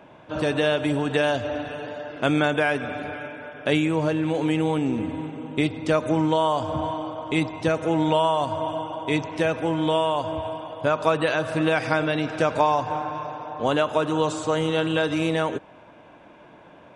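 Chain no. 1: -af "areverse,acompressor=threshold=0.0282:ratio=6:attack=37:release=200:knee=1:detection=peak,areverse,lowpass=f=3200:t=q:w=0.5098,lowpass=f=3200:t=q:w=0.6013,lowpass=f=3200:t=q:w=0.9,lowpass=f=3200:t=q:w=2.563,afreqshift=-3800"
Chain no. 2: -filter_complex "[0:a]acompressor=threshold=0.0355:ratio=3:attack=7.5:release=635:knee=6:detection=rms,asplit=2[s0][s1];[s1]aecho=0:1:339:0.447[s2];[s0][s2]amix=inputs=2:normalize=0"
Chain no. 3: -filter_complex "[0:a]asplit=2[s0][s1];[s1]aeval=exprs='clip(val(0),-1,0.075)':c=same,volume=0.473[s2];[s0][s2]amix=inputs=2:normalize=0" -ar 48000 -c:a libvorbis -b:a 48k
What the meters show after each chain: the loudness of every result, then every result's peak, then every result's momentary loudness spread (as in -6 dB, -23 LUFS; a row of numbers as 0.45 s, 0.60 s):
-29.0 LUFS, -32.5 LUFS, -21.5 LUFS; -16.5 dBFS, -15.5 dBFS, -3.0 dBFS; 4 LU, 5 LU, 9 LU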